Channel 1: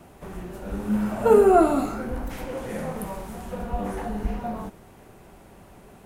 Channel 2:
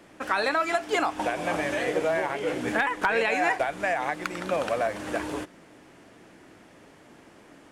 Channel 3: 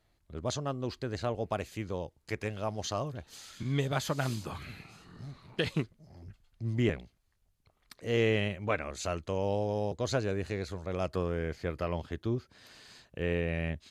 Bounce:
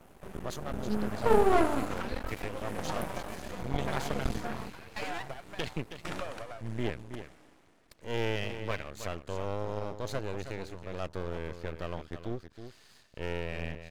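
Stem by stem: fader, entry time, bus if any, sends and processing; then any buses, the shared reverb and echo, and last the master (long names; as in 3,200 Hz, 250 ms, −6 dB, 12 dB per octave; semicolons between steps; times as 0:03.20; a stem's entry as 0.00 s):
−3.5 dB, 0.00 s, no send, no echo send, no processing
+2.5 dB, 1.70 s, no send, no echo send, downward compressor 6 to 1, threshold −29 dBFS, peak gain reduction 9.5 dB; tremolo with a ramp in dB decaying 0.92 Hz, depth 22 dB
−1.5 dB, 0.00 s, no send, echo send −10 dB, no processing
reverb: not used
echo: single-tap delay 321 ms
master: half-wave rectification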